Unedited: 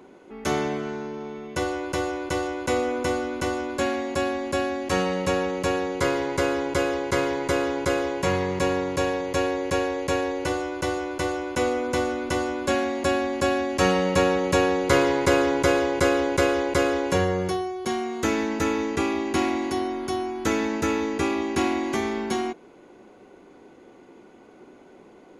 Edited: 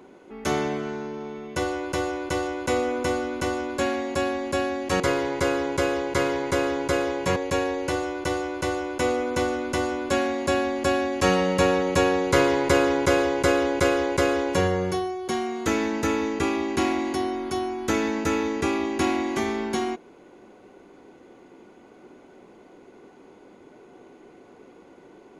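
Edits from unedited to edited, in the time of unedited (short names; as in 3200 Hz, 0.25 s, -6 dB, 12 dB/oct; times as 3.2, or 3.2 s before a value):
5–5.97 cut
8.33–9.93 cut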